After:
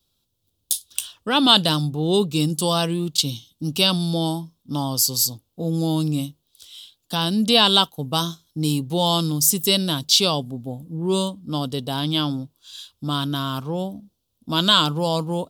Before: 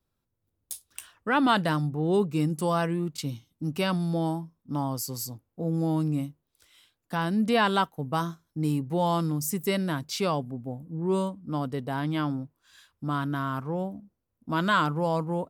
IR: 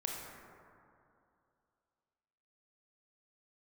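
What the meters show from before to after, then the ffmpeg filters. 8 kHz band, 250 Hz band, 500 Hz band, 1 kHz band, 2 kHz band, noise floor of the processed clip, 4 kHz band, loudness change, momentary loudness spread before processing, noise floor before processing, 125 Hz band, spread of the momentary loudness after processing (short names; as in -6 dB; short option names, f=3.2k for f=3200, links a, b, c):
+15.0 dB, +4.5 dB, +4.0 dB, +3.0 dB, +1.5 dB, -73 dBFS, +18.5 dB, +7.5 dB, 12 LU, -81 dBFS, +4.5 dB, 14 LU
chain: -af "highshelf=f=2.6k:t=q:w=3:g=9.5,volume=4.5dB"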